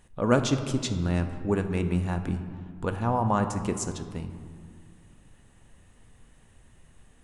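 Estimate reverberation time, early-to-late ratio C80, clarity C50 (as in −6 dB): 2.0 s, 10.5 dB, 9.0 dB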